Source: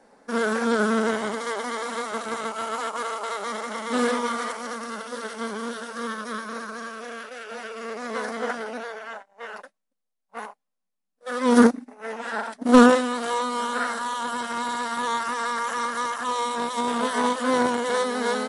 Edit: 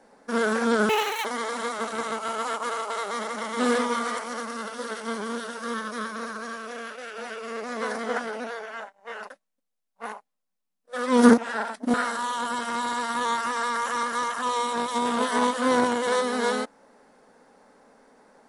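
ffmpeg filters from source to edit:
ffmpeg -i in.wav -filter_complex "[0:a]asplit=5[link_01][link_02][link_03][link_04][link_05];[link_01]atrim=end=0.894[link_06];[link_02]atrim=start=0.89:end=1.58,asetpts=PTS-STARTPTS,asetrate=85113,aresample=44100,atrim=end_sample=15766,asetpts=PTS-STARTPTS[link_07];[link_03]atrim=start=1.576:end=11.712[link_08];[link_04]atrim=start=12.158:end=12.722[link_09];[link_05]atrim=start=13.758[link_10];[link_06][link_07]acrossfade=duration=0.004:curve1=hsin:curve2=hsin[link_11];[link_11][link_08]acrossfade=duration=0.004:curve1=hsin:curve2=hsin[link_12];[link_12][link_09]acrossfade=duration=0.004:curve1=hsin:curve2=hsin[link_13];[link_13][link_10]acrossfade=duration=0.004:curve1=hsin:curve2=hsin" out.wav

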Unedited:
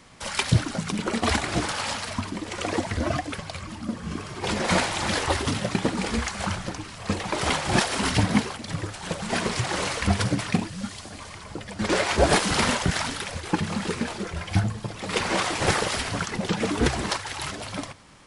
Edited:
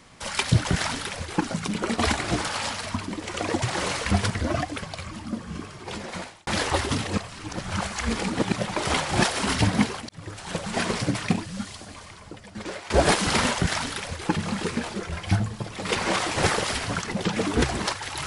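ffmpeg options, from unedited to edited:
ffmpeg -i in.wav -filter_complex "[0:a]asplit=11[link_01][link_02][link_03][link_04][link_05][link_06][link_07][link_08][link_09][link_10][link_11];[link_01]atrim=end=0.652[link_12];[link_02]atrim=start=12.798:end=13.562[link_13];[link_03]atrim=start=0.648:end=2.862[link_14];[link_04]atrim=start=9.578:end=10.262[link_15];[link_05]atrim=start=2.858:end=5.03,asetpts=PTS-STARTPTS,afade=type=out:start_time=0.922:duration=1.25[link_16];[link_06]atrim=start=5.03:end=5.612,asetpts=PTS-STARTPTS,afade=type=in:duration=0.004:curve=hsin[link_17];[link_07]atrim=start=5.608:end=7.222,asetpts=PTS-STARTPTS,areverse[link_18];[link_08]atrim=start=7.218:end=8.65,asetpts=PTS-STARTPTS,afade=type=out:start_time=1.428:duration=0.004:curve=hsin[link_19];[link_09]atrim=start=8.65:end=9.582,asetpts=PTS-STARTPTS,afade=type=in:duration=0.37[link_20];[link_10]atrim=start=10.258:end=12.14,asetpts=PTS-STARTPTS,afade=type=out:start_time=0.592:duration=1.29:silence=0.133352[link_21];[link_11]atrim=start=12.14,asetpts=PTS-STARTPTS,afade=type=in:duration=0.004:curve=hsin:silence=0.133352[link_22];[link_12][link_13]acrossfade=duration=0.004:curve1=hsin:curve2=hsin[link_23];[link_23][link_14]acrossfade=duration=0.004:curve1=hsin:curve2=hsin[link_24];[link_24][link_15]acrossfade=duration=0.004:curve1=hsin:curve2=hsin[link_25];[link_16][link_17]concat=n=2:v=0:a=1[link_26];[link_25][link_26]acrossfade=duration=0.004:curve1=hsin:curve2=hsin[link_27];[link_27][link_18]acrossfade=duration=0.004:curve1=hsin:curve2=hsin[link_28];[link_19][link_20]concat=n=2:v=0:a=1[link_29];[link_28][link_29]acrossfade=duration=0.004:curve1=hsin:curve2=hsin[link_30];[link_21][link_22]concat=n=2:v=0:a=1[link_31];[link_30][link_31]acrossfade=duration=0.004:curve1=hsin:curve2=hsin" out.wav

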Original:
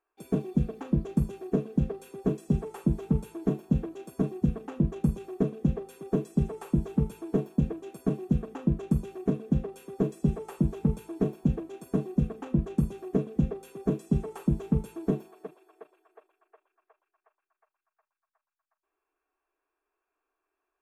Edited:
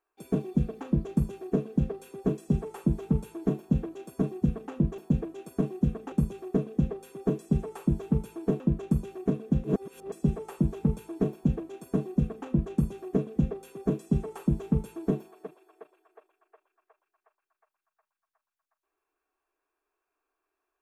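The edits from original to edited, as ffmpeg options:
ffmpeg -i in.wav -filter_complex "[0:a]asplit=6[link_01][link_02][link_03][link_04][link_05][link_06];[link_01]atrim=end=4.982[link_07];[link_02]atrim=start=7.458:end=8.602[link_08];[link_03]atrim=start=4.978:end=7.462[link_09];[link_04]atrim=start=8.598:end=9.642[link_10];[link_05]atrim=start=9.638:end=10.122,asetpts=PTS-STARTPTS,areverse[link_11];[link_06]atrim=start=10.118[link_12];[link_07][link_08]acrossfade=duration=0.004:curve1=hsin:curve2=hsin[link_13];[link_13][link_09]acrossfade=duration=0.004:curve1=hsin:curve2=hsin[link_14];[link_14][link_10]acrossfade=duration=0.004:curve1=hsin:curve2=hsin[link_15];[link_15][link_11]acrossfade=duration=0.004:curve1=hsin:curve2=hsin[link_16];[link_16][link_12]acrossfade=duration=0.004:curve1=hsin:curve2=hsin" out.wav

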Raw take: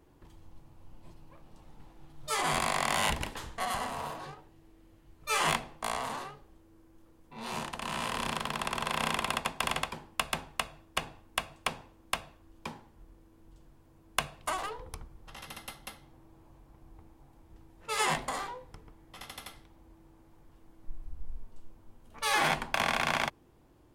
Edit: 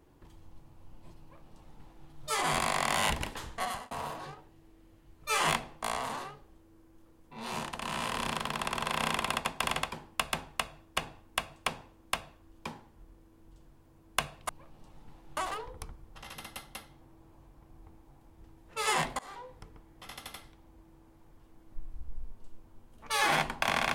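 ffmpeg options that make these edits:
ffmpeg -i in.wav -filter_complex "[0:a]asplit=5[link_01][link_02][link_03][link_04][link_05];[link_01]atrim=end=3.91,asetpts=PTS-STARTPTS,afade=type=out:start_time=3.63:duration=0.28[link_06];[link_02]atrim=start=3.91:end=14.492,asetpts=PTS-STARTPTS,afade=type=in:duration=0.004:curve=hsin[link_07];[link_03]atrim=start=1.208:end=2.092[link_08];[link_04]atrim=start=14.488:end=18.31,asetpts=PTS-STARTPTS,afade=type=out:start_time=3.818:duration=0.004:curve=hsin:silence=0.0707946[link_09];[link_05]atrim=start=18.31,asetpts=PTS-STARTPTS,afade=type=in:duration=0.35:silence=0.0707946[link_10];[link_06][link_07]concat=n=2:v=0:a=1[link_11];[link_11][link_08]acrossfade=duration=0.004:curve1=hsin:curve2=hsin[link_12];[link_09][link_10]concat=n=2:v=0:a=1[link_13];[link_12][link_13]acrossfade=duration=0.004:curve1=hsin:curve2=hsin" out.wav

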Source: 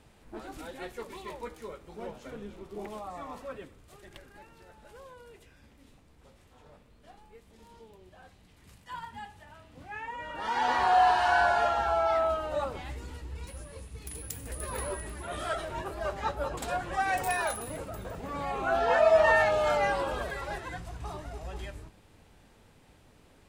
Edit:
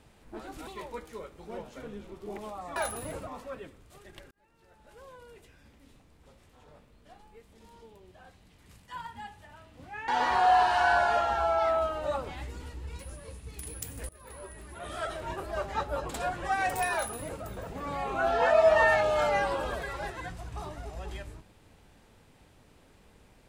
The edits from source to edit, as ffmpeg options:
ffmpeg -i in.wav -filter_complex "[0:a]asplit=7[link_01][link_02][link_03][link_04][link_05][link_06][link_07];[link_01]atrim=end=0.672[link_08];[link_02]atrim=start=1.158:end=3.252[link_09];[link_03]atrim=start=17.408:end=17.922[link_10];[link_04]atrim=start=3.248:end=4.29,asetpts=PTS-STARTPTS,afade=type=out:start_time=1.038:duration=0.004:curve=hsin[link_11];[link_05]atrim=start=4.29:end=10.062,asetpts=PTS-STARTPTS,afade=type=in:duration=0.82[link_12];[link_06]atrim=start=10.558:end=14.57,asetpts=PTS-STARTPTS,afade=type=out:start_time=4.008:duration=0.004:curve=hsin:silence=0.0891251[link_13];[link_07]atrim=start=14.57,asetpts=PTS-STARTPTS,afade=type=in:duration=1.24:silence=0.0891251[link_14];[link_08][link_09]acrossfade=duration=0.004:curve1=hsin:curve2=hsin[link_15];[link_15][link_10]acrossfade=duration=0.004:curve1=hsin:curve2=hsin[link_16];[link_11][link_12]concat=n=2:v=0:a=1[link_17];[link_16][link_17]acrossfade=duration=0.004:curve1=hsin:curve2=hsin[link_18];[link_13][link_14]concat=n=2:v=0:a=1[link_19];[link_18][link_19]acrossfade=duration=0.004:curve1=hsin:curve2=hsin" out.wav

